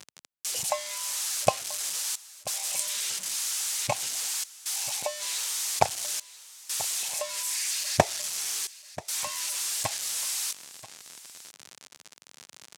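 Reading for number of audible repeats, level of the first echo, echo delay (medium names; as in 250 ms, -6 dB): 1, -17.5 dB, 985 ms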